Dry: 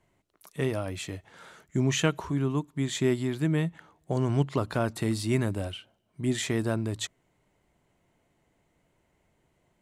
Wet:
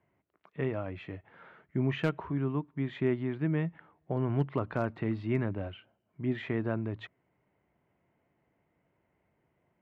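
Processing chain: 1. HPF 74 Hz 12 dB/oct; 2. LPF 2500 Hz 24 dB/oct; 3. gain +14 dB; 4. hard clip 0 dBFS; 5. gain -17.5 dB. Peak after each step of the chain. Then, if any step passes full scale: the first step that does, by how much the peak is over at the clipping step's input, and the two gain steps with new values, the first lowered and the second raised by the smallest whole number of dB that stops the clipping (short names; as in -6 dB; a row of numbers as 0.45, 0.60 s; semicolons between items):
-9.0, -9.5, +4.5, 0.0, -17.5 dBFS; step 3, 4.5 dB; step 3 +9 dB, step 5 -12.5 dB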